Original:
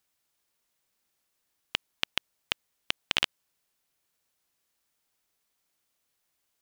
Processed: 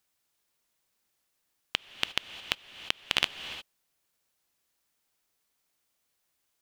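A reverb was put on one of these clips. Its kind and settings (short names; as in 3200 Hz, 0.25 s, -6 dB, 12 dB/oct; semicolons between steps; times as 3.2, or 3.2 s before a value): non-linear reverb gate 0.38 s rising, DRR 11 dB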